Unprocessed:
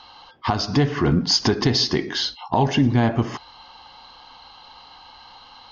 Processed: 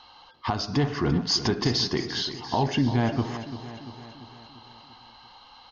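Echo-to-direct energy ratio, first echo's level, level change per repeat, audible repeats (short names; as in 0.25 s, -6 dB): -10.5 dB, -12.0 dB, -5.0 dB, 5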